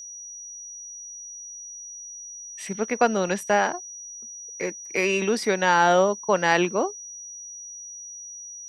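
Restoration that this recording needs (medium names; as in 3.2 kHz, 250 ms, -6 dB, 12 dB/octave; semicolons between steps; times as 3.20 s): band-stop 5.8 kHz, Q 30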